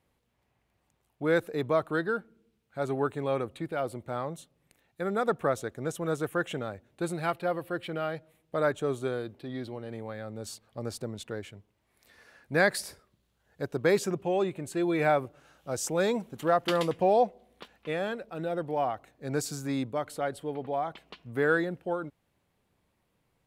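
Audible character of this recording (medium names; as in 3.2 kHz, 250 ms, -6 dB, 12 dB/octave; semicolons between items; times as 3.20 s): noise floor -75 dBFS; spectral tilt -5.0 dB/octave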